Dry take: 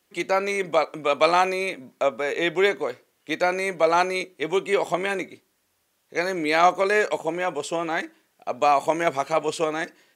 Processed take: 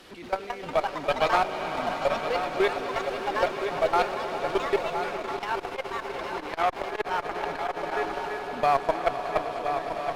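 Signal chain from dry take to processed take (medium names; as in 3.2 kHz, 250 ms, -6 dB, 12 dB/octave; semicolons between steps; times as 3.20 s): one-bit delta coder 64 kbps, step -24.5 dBFS; tone controls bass 0 dB, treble +15 dB; band-stop 2.1 kHz, Q 25; level held to a coarse grid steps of 18 dB; Chebyshev shaper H 4 -12 dB, 6 -22 dB, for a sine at -4 dBFS; distance through air 390 m; shuffle delay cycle 1356 ms, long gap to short 3:1, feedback 46%, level -9 dB; ever faster or slower copies 240 ms, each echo +4 st, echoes 3, each echo -6 dB; echo with a slow build-up 101 ms, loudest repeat 5, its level -15 dB; 5.16–7.95 s: transformer saturation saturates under 1.1 kHz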